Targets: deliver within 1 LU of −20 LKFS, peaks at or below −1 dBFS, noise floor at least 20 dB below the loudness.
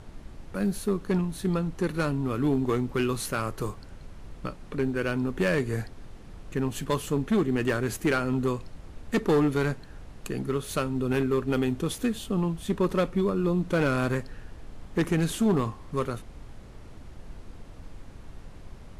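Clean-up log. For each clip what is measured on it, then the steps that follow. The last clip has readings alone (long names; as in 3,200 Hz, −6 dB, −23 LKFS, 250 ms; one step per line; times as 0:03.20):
share of clipped samples 1.0%; peaks flattened at −18.0 dBFS; background noise floor −46 dBFS; target noise floor −48 dBFS; integrated loudness −28.0 LKFS; sample peak −18.0 dBFS; target loudness −20.0 LKFS
→ clipped peaks rebuilt −18 dBFS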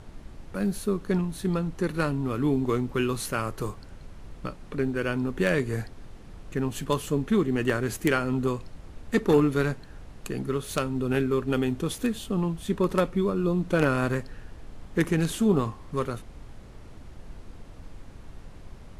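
share of clipped samples 0.0%; background noise floor −46 dBFS; target noise floor −47 dBFS
→ noise reduction from a noise print 6 dB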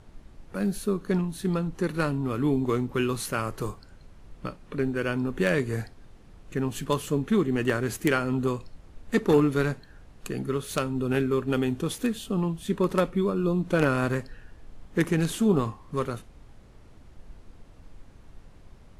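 background noise floor −51 dBFS; integrated loudness −27.0 LKFS; sample peak −9.0 dBFS; target loudness −20.0 LKFS
→ level +7 dB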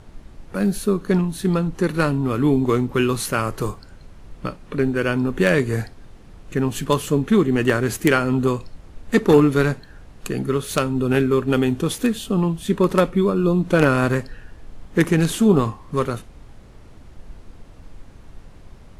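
integrated loudness −20.0 LKFS; sample peak −2.0 dBFS; background noise floor −44 dBFS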